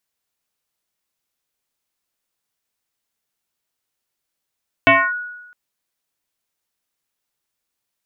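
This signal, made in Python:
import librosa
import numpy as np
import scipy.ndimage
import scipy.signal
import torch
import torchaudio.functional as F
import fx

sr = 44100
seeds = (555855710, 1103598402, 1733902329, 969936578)

y = fx.fm2(sr, length_s=0.66, level_db=-6.0, carrier_hz=1460.0, ratio=0.27, index=3.2, index_s=0.26, decay_s=1.04, shape='linear')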